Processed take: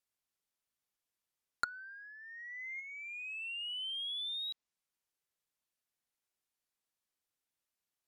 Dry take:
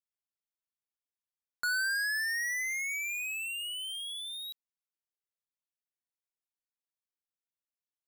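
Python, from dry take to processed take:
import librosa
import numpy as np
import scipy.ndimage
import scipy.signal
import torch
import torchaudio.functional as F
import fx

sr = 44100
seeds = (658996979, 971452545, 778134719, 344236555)

y = fx.lowpass(x, sr, hz=2100.0, slope=6, at=(1.69, 2.79))
y = fx.env_lowpass_down(y, sr, base_hz=450.0, full_db=-32.5)
y = F.gain(torch.from_numpy(y), 5.5).numpy()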